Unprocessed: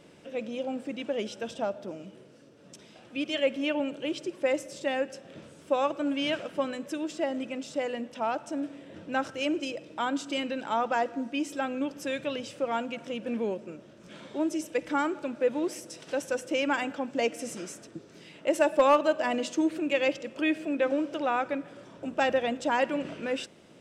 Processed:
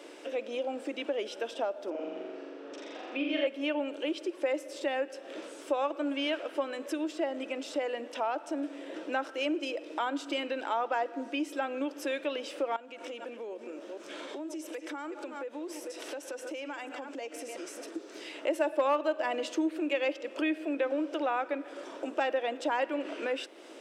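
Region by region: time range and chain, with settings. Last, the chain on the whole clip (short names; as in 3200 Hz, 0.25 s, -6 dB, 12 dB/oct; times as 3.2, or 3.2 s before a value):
1.9–3.47 BPF 130–2900 Hz + flutter echo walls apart 7.3 m, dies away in 1.3 s
12.76–17.96 reverse delay 0.243 s, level -13 dB + compressor, threshold -43 dBFS
whole clip: Chebyshev high-pass 300 Hz, order 4; dynamic EQ 7000 Hz, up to -7 dB, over -57 dBFS, Q 1.2; compressor 2:1, threshold -44 dBFS; gain +8 dB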